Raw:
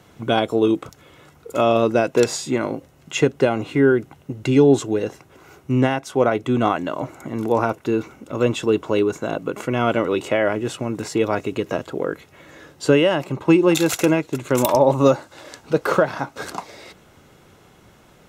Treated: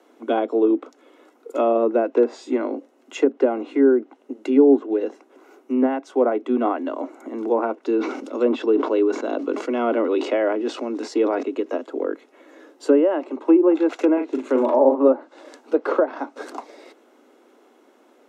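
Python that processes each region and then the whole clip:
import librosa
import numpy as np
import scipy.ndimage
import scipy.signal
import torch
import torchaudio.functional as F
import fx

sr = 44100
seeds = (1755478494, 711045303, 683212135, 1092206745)

y = fx.chain(x, sr, fx.peak_eq(hz=4800.0, db=8.0, octaves=0.96),
    fx.sustainer(db_per_s=52.0), at=(7.83, 11.43))
y = fx.chain(y, sr, fx.law_mismatch(coded='mu'),
    fx.doubler(ms=38.0, db=-7.0), at=(14.13, 15.08))
y = fx.env_lowpass_down(y, sr, base_hz=1300.0, full_db=-11.5)
y = scipy.signal.sosfilt(scipy.signal.butter(16, 240.0, 'highpass', fs=sr, output='sos'), y)
y = fx.tilt_shelf(y, sr, db=6.0, hz=1100.0)
y = y * librosa.db_to_amplitude(-4.5)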